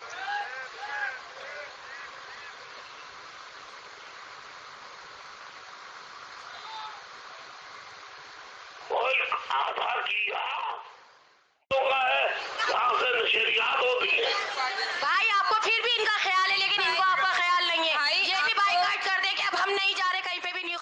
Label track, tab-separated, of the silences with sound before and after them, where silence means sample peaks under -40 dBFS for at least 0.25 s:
10.950000	11.710000	silence